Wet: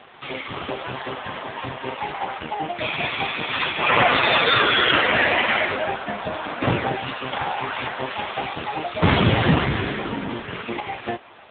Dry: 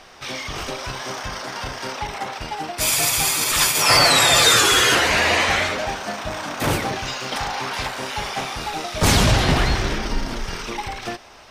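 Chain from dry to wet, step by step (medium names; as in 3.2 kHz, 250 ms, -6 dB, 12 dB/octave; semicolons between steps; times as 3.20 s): 1.02–2.00 s: band-stop 1.4 kHz, Q 7.1; 9.59–9.99 s: peaking EQ 1.1 kHz -> 260 Hz -6 dB 0.28 oct; trim +4.5 dB; AMR-NB 5.9 kbps 8 kHz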